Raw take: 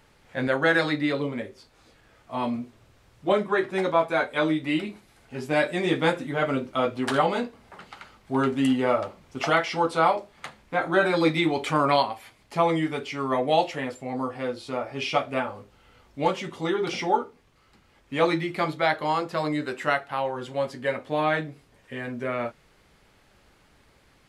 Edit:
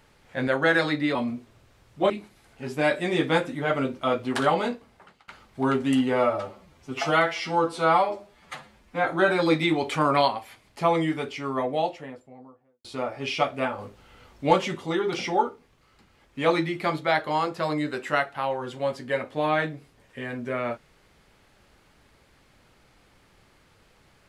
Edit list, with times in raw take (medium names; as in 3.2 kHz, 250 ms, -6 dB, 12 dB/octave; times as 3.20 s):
1.15–2.41 s: delete
3.36–4.82 s: delete
7.39–8.00 s: fade out, to -22 dB
8.84–10.79 s: stretch 1.5×
12.85–14.59 s: studio fade out
15.53–16.52 s: gain +4 dB